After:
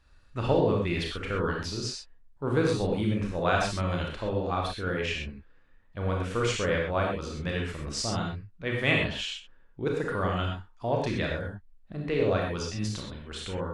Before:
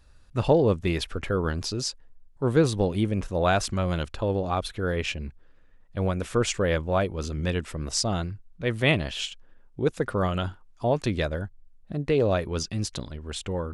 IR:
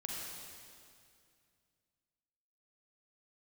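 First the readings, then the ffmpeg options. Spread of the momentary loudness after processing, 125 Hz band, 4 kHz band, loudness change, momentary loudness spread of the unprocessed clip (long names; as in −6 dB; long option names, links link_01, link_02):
10 LU, −3.5 dB, −2.0 dB, −2.5 dB, 11 LU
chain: -filter_complex "[0:a]lowpass=frequency=2600:poles=1,acrossover=split=990[link_01][link_02];[link_02]acontrast=67[link_03];[link_01][link_03]amix=inputs=2:normalize=0[link_04];[1:a]atrim=start_sample=2205,afade=type=out:start_time=0.24:duration=0.01,atrim=end_sample=11025,asetrate=61740,aresample=44100[link_05];[link_04][link_05]afir=irnorm=-1:irlink=0"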